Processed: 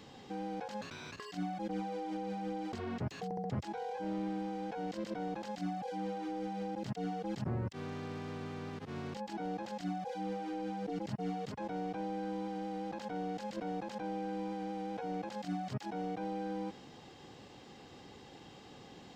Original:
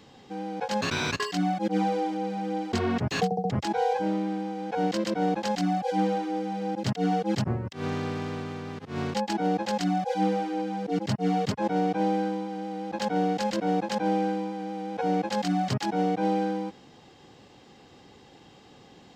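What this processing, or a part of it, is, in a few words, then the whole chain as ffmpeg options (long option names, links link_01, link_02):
de-esser from a sidechain: -filter_complex "[0:a]asplit=2[link_01][link_02];[link_02]highpass=frequency=4500:poles=1,apad=whole_len=844598[link_03];[link_01][link_03]sidechaincompress=threshold=-55dB:ratio=6:attack=4.2:release=21,volume=-1dB"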